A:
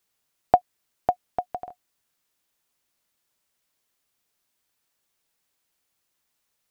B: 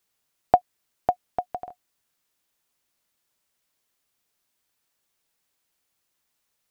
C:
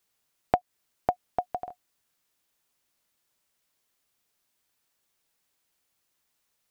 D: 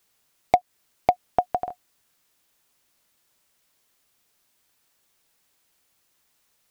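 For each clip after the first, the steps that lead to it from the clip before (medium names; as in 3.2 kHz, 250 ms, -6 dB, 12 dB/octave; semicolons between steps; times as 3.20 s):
no audible change
compression 3:1, threshold -21 dBFS, peak gain reduction 8 dB
overload inside the chain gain 14 dB; trim +7.5 dB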